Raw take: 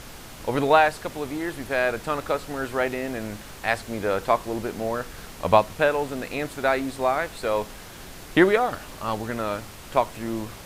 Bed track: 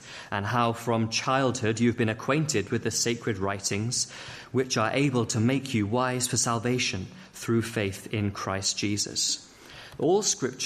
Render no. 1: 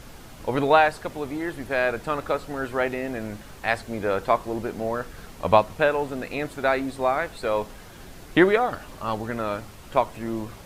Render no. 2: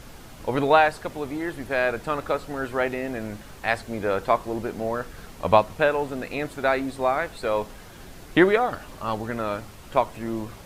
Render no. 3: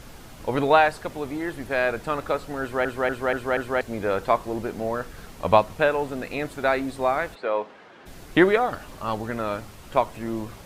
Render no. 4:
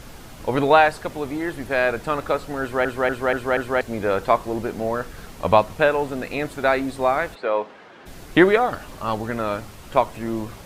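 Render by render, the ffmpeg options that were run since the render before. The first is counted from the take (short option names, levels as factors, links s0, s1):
-af "afftdn=nr=6:nf=-42"
-af anull
-filter_complex "[0:a]asplit=3[s0][s1][s2];[s0]afade=t=out:st=7.34:d=0.02[s3];[s1]highpass=310,lowpass=2700,afade=t=in:st=7.34:d=0.02,afade=t=out:st=8.05:d=0.02[s4];[s2]afade=t=in:st=8.05:d=0.02[s5];[s3][s4][s5]amix=inputs=3:normalize=0,asplit=6[s6][s7][s8][s9][s10][s11];[s6]atrim=end=2.852[s12];[s7]atrim=start=2.608:end=2.852[s13];[s8]atrim=start=2.608:end=2.852[s14];[s9]atrim=start=2.608:end=2.852[s15];[s10]atrim=start=2.608:end=2.852[s16];[s11]atrim=start=3.808[s17];[s12][s13]acrossfade=d=0.004:c1=hsin:c2=hsin[s18];[s18][s14]acrossfade=d=0.004:c1=hsin:c2=hsin[s19];[s19][s15]acrossfade=d=0.004:c1=hsin:c2=hsin[s20];[s20][s16]acrossfade=d=0.004:c1=hsin:c2=hsin[s21];[s21][s17]acrossfade=d=0.004:c1=hsin:c2=hsin"
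-af "volume=1.41,alimiter=limit=0.794:level=0:latency=1"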